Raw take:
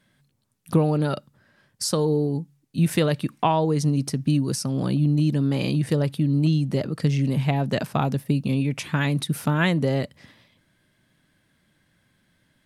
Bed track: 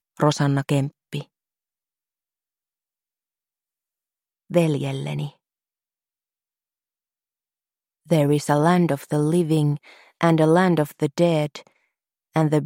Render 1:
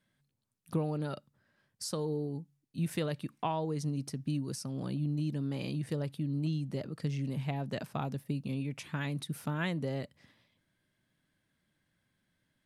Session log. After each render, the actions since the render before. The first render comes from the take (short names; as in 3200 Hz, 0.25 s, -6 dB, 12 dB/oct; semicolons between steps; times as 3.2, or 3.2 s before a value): gain -12.5 dB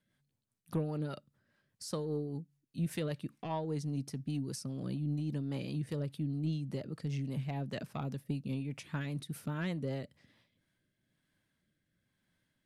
soft clip -23 dBFS, distortion -24 dB; rotary speaker horn 5 Hz, later 1 Hz, at 10.1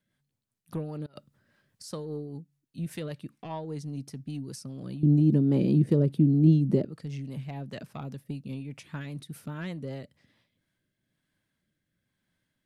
1.06–1.84 negative-ratio compressor -49 dBFS, ratio -0.5; 5.03–6.85 small resonant body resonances 210/340 Hz, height 18 dB, ringing for 25 ms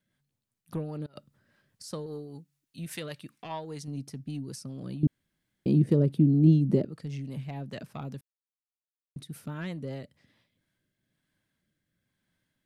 2.06–3.88 tilt shelf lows -5.5 dB, about 720 Hz; 5.07–5.66 room tone; 8.21–9.16 mute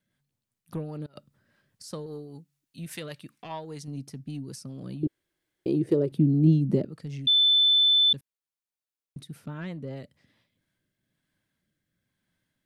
5.03–6.12 resonant low shelf 280 Hz -6.5 dB, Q 3; 7.27–8.13 bleep 3520 Hz -17 dBFS; 9.31–9.96 high shelf 6800 Hz -> 3700 Hz -9.5 dB